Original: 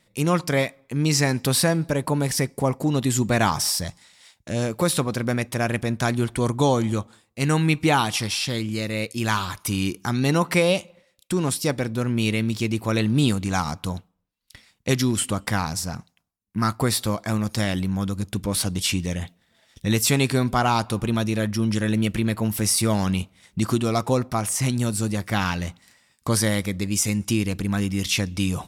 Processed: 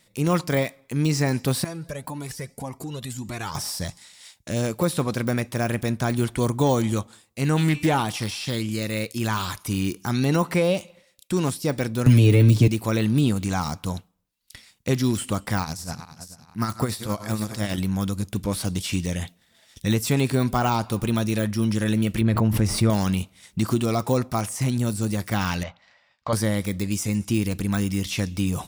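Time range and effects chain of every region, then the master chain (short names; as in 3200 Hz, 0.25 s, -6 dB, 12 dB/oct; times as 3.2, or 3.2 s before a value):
1.64–3.55 compressor 2.5:1, threshold -26 dBFS + cascading flanger rising 1.8 Hz
7.56–8.03 bell 14000 Hz +5.5 dB 1.8 oct + de-hum 294.8 Hz, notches 29 + Doppler distortion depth 0.18 ms
12.06–12.68 low shelf 400 Hz +10.5 dB + comb 6.9 ms, depth 76% + three-band squash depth 100%
15.61–17.78 regenerating reverse delay 0.224 s, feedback 57%, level -13 dB + tremolo 9.9 Hz, depth 63%
22.21–22.9 LPF 1200 Hz 6 dB/oct + low shelf 93 Hz +10 dB + backwards sustainer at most 27 dB/s
25.63–26.33 Gaussian blur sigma 2.3 samples + resonant low shelf 470 Hz -7.5 dB, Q 3
whole clip: de-esser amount 85%; high shelf 3600 Hz +8 dB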